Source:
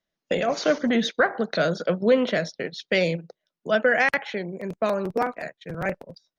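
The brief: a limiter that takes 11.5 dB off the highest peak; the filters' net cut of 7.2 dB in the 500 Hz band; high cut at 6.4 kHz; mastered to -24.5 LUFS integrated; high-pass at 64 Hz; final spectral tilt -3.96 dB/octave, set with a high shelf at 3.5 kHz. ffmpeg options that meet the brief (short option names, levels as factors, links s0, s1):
-af "highpass=64,lowpass=6400,equalizer=f=500:t=o:g=-8.5,highshelf=f=3500:g=-4.5,volume=2.82,alimiter=limit=0.211:level=0:latency=1"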